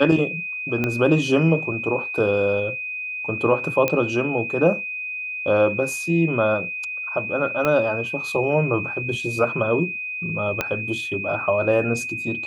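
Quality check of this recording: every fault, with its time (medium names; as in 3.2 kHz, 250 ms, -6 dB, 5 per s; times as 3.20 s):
whine 2.5 kHz -27 dBFS
0.84 s: pop -10 dBFS
3.88 s: pop -7 dBFS
7.65 s: pop -9 dBFS
10.61 s: pop -7 dBFS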